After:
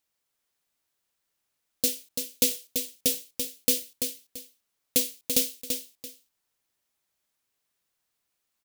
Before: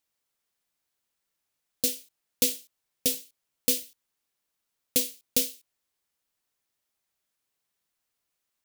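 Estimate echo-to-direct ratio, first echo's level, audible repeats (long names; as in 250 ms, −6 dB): −6.0 dB, −6.5 dB, 2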